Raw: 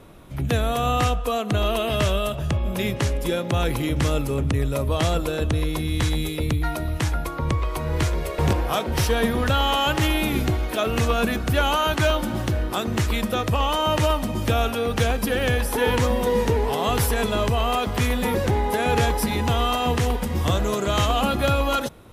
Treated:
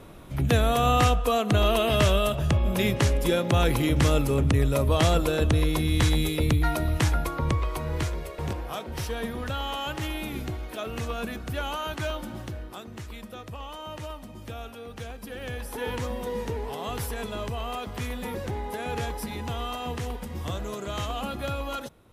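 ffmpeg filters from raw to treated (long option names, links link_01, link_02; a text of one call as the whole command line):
ffmpeg -i in.wav -af "volume=7dB,afade=type=out:start_time=7.03:duration=1.36:silence=0.281838,afade=type=out:start_time=12.27:duration=0.64:silence=0.473151,afade=type=in:start_time=15.2:duration=0.66:silence=0.473151" out.wav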